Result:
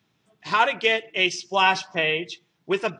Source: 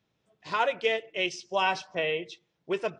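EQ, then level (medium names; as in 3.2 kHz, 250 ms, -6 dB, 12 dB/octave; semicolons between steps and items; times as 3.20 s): high-pass 100 Hz; peaking EQ 530 Hz -8.5 dB 0.64 oct; +8.5 dB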